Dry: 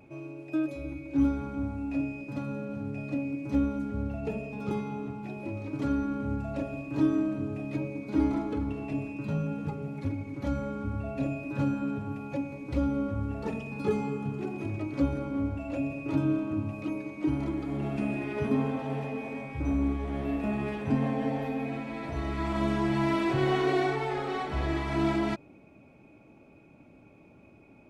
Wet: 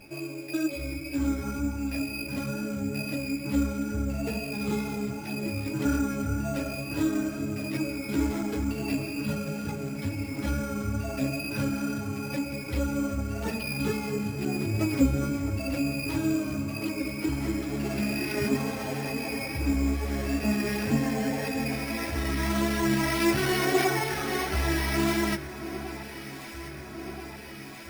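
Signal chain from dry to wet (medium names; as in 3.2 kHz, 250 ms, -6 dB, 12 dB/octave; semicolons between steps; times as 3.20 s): high-order bell 2.5 kHz +8.5 dB; in parallel at 0 dB: compression, threshold -35 dBFS, peak gain reduction 14.5 dB; on the sum: wow and flutter 23 cents; chorus voices 6, 1.4 Hz, delay 12 ms, depth 3 ms; sample-and-hold 6×; on a send: echo whose repeats swap between lows and highs 666 ms, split 1.6 kHz, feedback 84%, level -13 dB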